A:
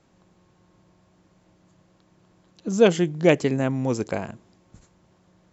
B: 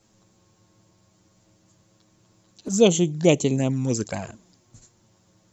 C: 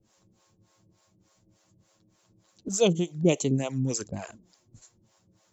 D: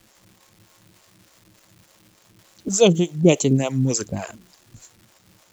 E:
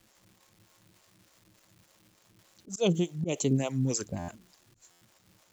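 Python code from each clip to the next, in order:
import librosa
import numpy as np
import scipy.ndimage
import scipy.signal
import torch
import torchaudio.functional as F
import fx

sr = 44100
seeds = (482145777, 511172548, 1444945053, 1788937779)

y1 = fx.bass_treble(x, sr, bass_db=3, treble_db=14)
y1 = fx.env_flanger(y1, sr, rest_ms=9.6, full_db=-17.0)
y2 = fx.harmonic_tremolo(y1, sr, hz=3.4, depth_pct=100, crossover_hz=460.0)
y3 = fx.dmg_crackle(y2, sr, seeds[0], per_s=580.0, level_db=-50.0)
y3 = y3 * 10.0 ** (7.5 / 20.0)
y4 = fx.auto_swell(y3, sr, attack_ms=146.0)
y4 = fx.buffer_glitch(y4, sr, at_s=(4.18, 4.91), block=512, repeats=8)
y4 = y4 * 10.0 ** (-8.0 / 20.0)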